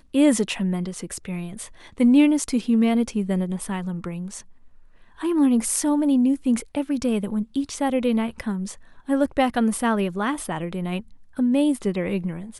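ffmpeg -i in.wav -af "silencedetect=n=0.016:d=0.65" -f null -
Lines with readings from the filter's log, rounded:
silence_start: 4.41
silence_end: 5.19 | silence_duration: 0.78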